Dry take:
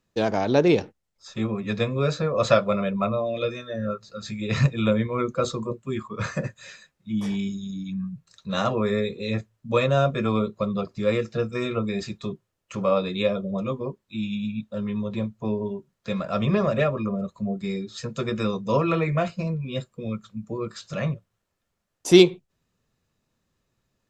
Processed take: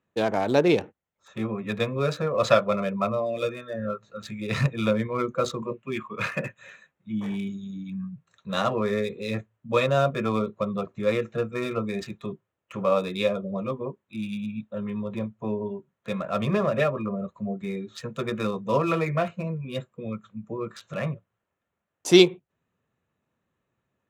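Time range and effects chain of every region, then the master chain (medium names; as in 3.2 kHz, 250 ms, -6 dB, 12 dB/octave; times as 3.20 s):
5.62–6.57 s: band-pass 120–6000 Hz + peaking EQ 2.6 kHz +11 dB 0.63 oct
whole clip: local Wiener filter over 9 samples; high-pass 73 Hz; bass shelf 390 Hz -5 dB; trim +1 dB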